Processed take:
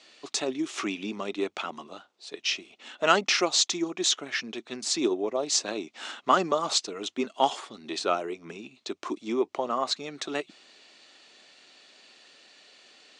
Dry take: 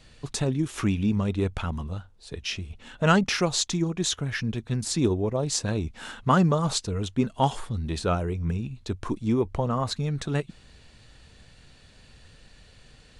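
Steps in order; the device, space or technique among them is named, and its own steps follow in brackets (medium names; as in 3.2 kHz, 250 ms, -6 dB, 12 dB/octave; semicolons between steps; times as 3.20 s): phone speaker on a table (cabinet simulation 340–7300 Hz, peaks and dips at 480 Hz -9 dB, 930 Hz -5 dB, 1.6 kHz -6 dB); trim +4 dB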